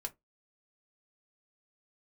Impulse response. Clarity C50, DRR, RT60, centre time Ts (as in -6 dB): 23.0 dB, 4.0 dB, no single decay rate, 5 ms